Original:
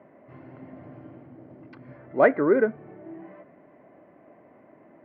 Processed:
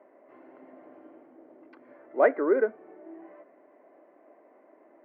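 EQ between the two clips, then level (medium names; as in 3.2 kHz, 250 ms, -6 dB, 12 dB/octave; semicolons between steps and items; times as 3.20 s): high-pass 310 Hz 24 dB/octave; treble shelf 2.6 kHz -9.5 dB; -2.0 dB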